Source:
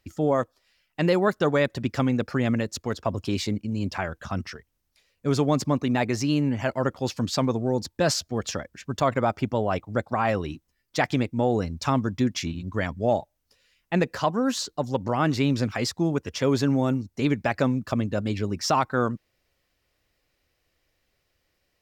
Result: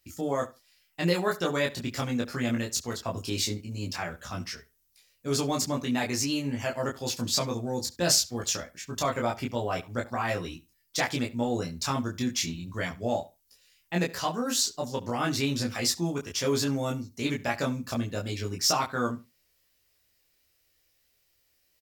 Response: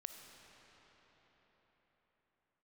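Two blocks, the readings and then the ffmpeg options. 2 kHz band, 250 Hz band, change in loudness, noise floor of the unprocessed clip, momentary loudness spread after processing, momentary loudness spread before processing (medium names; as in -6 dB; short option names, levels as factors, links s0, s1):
-2.0 dB, -6.0 dB, -3.5 dB, -75 dBFS, 8 LU, 7 LU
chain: -filter_complex "[0:a]asplit=2[s0][s1];[s1]aecho=0:1:17|29:0.708|0.668[s2];[s0][s2]amix=inputs=2:normalize=0,crystalizer=i=4:c=0,asplit=2[s3][s4];[s4]adelay=70,lowpass=f=5000:p=1,volume=0.126,asplit=2[s5][s6];[s6]adelay=70,lowpass=f=5000:p=1,volume=0.18[s7];[s5][s7]amix=inputs=2:normalize=0[s8];[s3][s8]amix=inputs=2:normalize=0,volume=0.355"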